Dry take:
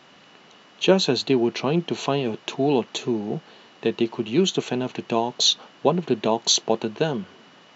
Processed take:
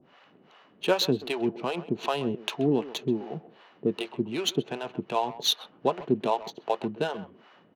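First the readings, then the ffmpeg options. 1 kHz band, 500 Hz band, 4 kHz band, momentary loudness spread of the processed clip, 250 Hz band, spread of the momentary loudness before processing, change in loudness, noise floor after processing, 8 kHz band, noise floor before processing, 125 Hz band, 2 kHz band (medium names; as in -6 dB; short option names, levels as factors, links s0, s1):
-3.0 dB, -6.0 dB, -7.0 dB, 7 LU, -6.0 dB, 8 LU, -6.0 dB, -60 dBFS, no reading, -52 dBFS, -7.0 dB, -4.5 dB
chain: -filter_complex "[0:a]acrossover=split=510[s0][s1];[s0]aeval=exprs='val(0)*(1-1/2+1/2*cos(2*PI*2.6*n/s))':c=same[s2];[s1]aeval=exprs='val(0)*(1-1/2-1/2*cos(2*PI*2.6*n/s))':c=same[s3];[s2][s3]amix=inputs=2:normalize=0,asplit=2[s4][s5];[s5]adelay=130,highpass=300,lowpass=3400,asoftclip=type=hard:threshold=0.0944,volume=0.2[s6];[s4][s6]amix=inputs=2:normalize=0,adynamicsmooth=sensitivity=5.5:basefreq=2600"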